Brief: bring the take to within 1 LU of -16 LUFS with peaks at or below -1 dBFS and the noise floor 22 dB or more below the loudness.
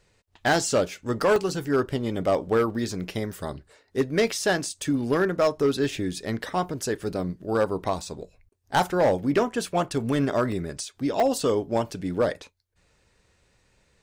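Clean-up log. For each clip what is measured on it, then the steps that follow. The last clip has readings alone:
clipped samples 0.9%; clipping level -15.0 dBFS; dropouts 5; longest dropout 1.7 ms; loudness -26.0 LUFS; peak level -15.0 dBFS; loudness target -16.0 LUFS
-> clip repair -15 dBFS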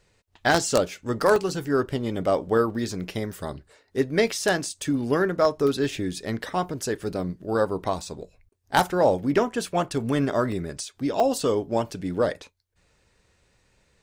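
clipped samples 0.0%; dropouts 5; longest dropout 1.7 ms
-> interpolate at 1.36/5.89/6.82/10.52/11.20 s, 1.7 ms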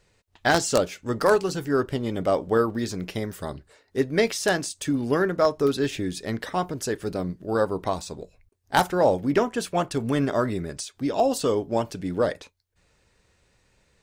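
dropouts 0; loudness -25.0 LUFS; peak level -6.0 dBFS; loudness target -16.0 LUFS
-> trim +9 dB; peak limiter -1 dBFS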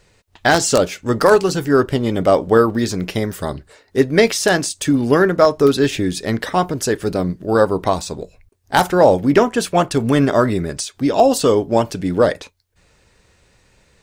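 loudness -16.5 LUFS; peak level -1.0 dBFS; noise floor -58 dBFS

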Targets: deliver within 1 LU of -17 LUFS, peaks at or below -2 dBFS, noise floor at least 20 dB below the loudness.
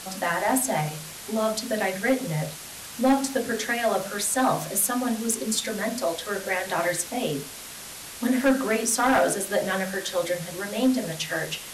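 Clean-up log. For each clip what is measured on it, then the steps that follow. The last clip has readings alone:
clipped samples 0.4%; clipping level -14.5 dBFS; noise floor -40 dBFS; noise floor target -46 dBFS; loudness -25.5 LUFS; peak level -14.5 dBFS; loudness target -17.0 LUFS
-> clip repair -14.5 dBFS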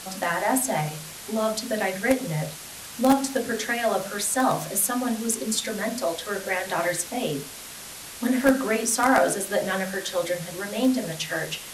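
clipped samples 0.0%; noise floor -40 dBFS; noise floor target -45 dBFS
-> noise print and reduce 6 dB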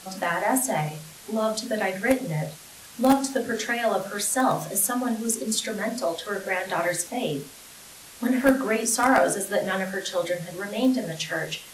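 noise floor -46 dBFS; loudness -25.0 LUFS; peak level -5.5 dBFS; loudness target -17.0 LUFS
-> trim +8 dB; peak limiter -2 dBFS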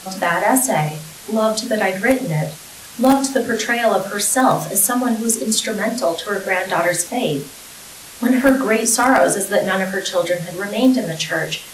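loudness -17.5 LUFS; peak level -2.0 dBFS; noise floor -38 dBFS

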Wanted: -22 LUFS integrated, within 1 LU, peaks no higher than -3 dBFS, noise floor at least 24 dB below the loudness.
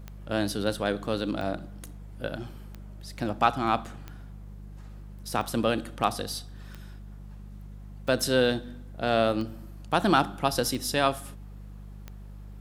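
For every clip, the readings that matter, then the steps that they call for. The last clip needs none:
clicks found 10; hum 50 Hz; highest harmonic 200 Hz; hum level -40 dBFS; loudness -28.0 LUFS; peak level -6.5 dBFS; loudness target -22.0 LUFS
-> de-click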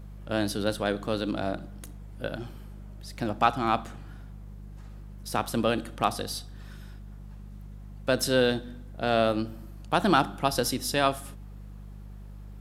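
clicks found 0; hum 50 Hz; highest harmonic 200 Hz; hum level -40 dBFS
-> de-hum 50 Hz, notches 4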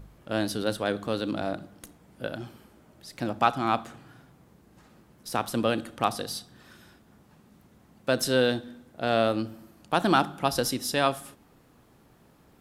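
hum not found; loudness -28.0 LUFS; peak level -6.5 dBFS; loudness target -22.0 LUFS
-> trim +6 dB; peak limiter -3 dBFS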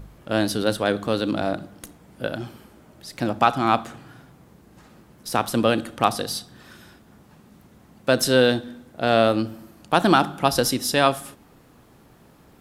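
loudness -22.0 LUFS; peak level -3.0 dBFS; noise floor -53 dBFS

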